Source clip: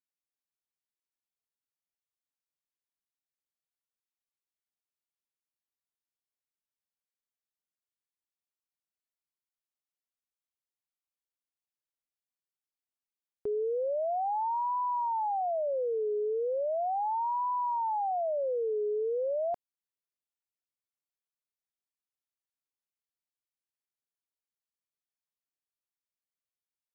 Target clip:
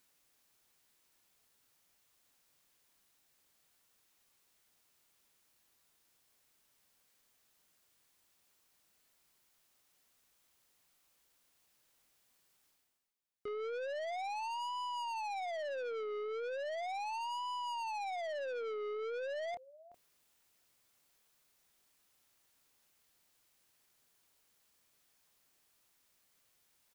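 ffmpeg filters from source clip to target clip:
ffmpeg -i in.wav -filter_complex "[0:a]asplit=2[link_01][link_02];[link_02]adelay=27,volume=-12dB[link_03];[link_01][link_03]amix=inputs=2:normalize=0,asplit=2[link_04][link_05];[link_05]adelay=373.2,volume=-30dB,highshelf=frequency=4000:gain=-8.4[link_06];[link_04][link_06]amix=inputs=2:normalize=0,aeval=exprs='(tanh(100*val(0)+0.05)-tanh(0.05))/100':channel_layout=same,areverse,acompressor=mode=upward:threshold=-58dB:ratio=2.5,areverse,volume=1.5dB" out.wav

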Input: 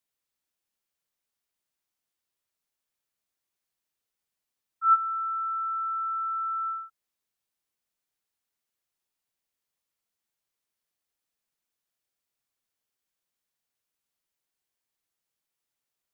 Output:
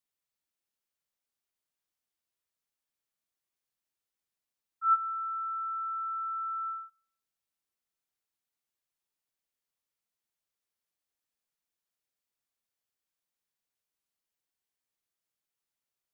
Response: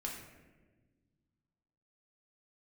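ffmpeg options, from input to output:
-filter_complex "[0:a]asplit=2[link_01][link_02];[link_02]asuperpass=centerf=1200:order=4:qfactor=6[link_03];[1:a]atrim=start_sample=2205[link_04];[link_03][link_04]afir=irnorm=-1:irlink=0,volume=-20dB[link_05];[link_01][link_05]amix=inputs=2:normalize=0,volume=-4.5dB"

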